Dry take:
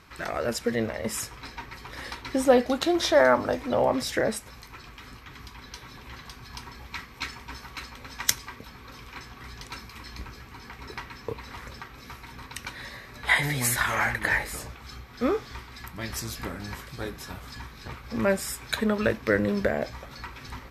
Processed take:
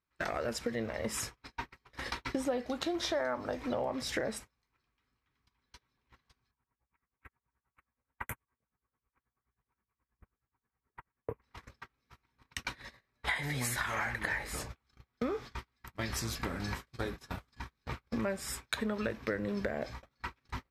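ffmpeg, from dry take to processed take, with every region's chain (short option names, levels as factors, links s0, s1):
-filter_complex "[0:a]asettb=1/sr,asplit=3[s0][s1][s2];[s0]atrim=end=6.514[s3];[s1]atrim=start=6.51:end=11.42,asetpts=PTS-STARTPTS,afade=t=in:d=0.004:c=qsin,afade=t=out:st=4.906:d=0.004:c=qsin,asuperstop=centerf=4900:order=4:qfactor=0.52,equalizer=f=290:t=o:w=1:g=-3,aeval=exprs='val(0)*pow(10,-19*(0.5-0.5*cos(2*PI*9.4*n/s))/20)':c=same[s4];[s2]atrim=start=11.416[s5];[s3][s4]acrossfade=d=0.004:c1=hsin:c2=qsin[s6];[s6][s5]acrossfade=d=0.004:c1=qsin:c2=hsin,agate=range=0.0126:threshold=0.0141:ratio=16:detection=peak,highshelf=f=12000:g=-10,acompressor=threshold=0.0178:ratio=5,volume=1.33"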